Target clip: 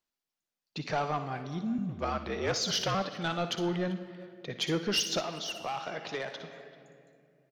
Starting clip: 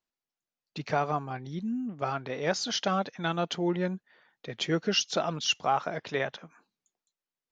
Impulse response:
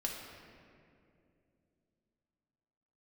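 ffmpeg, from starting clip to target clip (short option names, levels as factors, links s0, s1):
-filter_complex "[0:a]asettb=1/sr,asplit=3[s0][s1][s2];[s0]atrim=end=1.784[s3];[s1]atrim=start=1.78:end=2.95,asetpts=PTS-STARTPTS,afade=t=in:d=0.004:c=qsin,afade=t=out:st=1.166:d=0.004:c=qsin,afreqshift=-57[s4];[s2]atrim=start=2.946[s5];[s3][s4]acrossfade=d=0.004:c1=hsin:c2=qsin[s6];[s6][s5]acrossfade=d=0.004:c1=qsin:c2=hsin,asoftclip=type=tanh:threshold=0.0708,asplit=2[s7][s8];[s8]highpass=120[s9];[1:a]atrim=start_sample=2205,highshelf=f=4000:g=7,adelay=59[s10];[s9][s10]afir=irnorm=-1:irlink=0,volume=0.251[s11];[s7][s11]amix=inputs=2:normalize=0,asettb=1/sr,asplit=3[s12][s13][s14];[s12]atrim=end=5.194[s15];[s13]atrim=start=5.19:end=6.41,asetpts=PTS-STARTPTS,afade=t=in:d=0.004:c=qsin,afade=t=out:st=1.216:d=0.004:c=qsin,acrossover=split=230|1500[s16][s17][s18];[s16]acompressor=threshold=0.00251:ratio=4[s19];[s17]acompressor=threshold=0.0178:ratio=4[s20];[s18]acompressor=threshold=0.01:ratio=4[s21];[s19][s20][s21]amix=inputs=3:normalize=0[s22];[s14]atrim=start=6.406[s23];[s15][s22]acrossfade=d=0.004:c1=hsin:c2=qsin[s24];[s24][s23]acrossfade=d=0.004:c1=qsin:c2=hsin,equalizer=f=4400:t=o:w=1.4:g=2,asplit=2[s25][s26];[s26]adelay=390,highpass=300,lowpass=3400,asoftclip=type=hard:threshold=0.0376,volume=0.126[s27];[s25][s27]amix=inputs=2:normalize=0"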